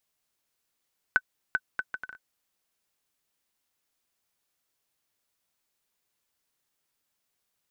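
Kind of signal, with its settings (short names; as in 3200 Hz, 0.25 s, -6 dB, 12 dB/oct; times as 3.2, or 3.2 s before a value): bouncing ball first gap 0.39 s, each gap 0.62, 1510 Hz, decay 49 ms -9.5 dBFS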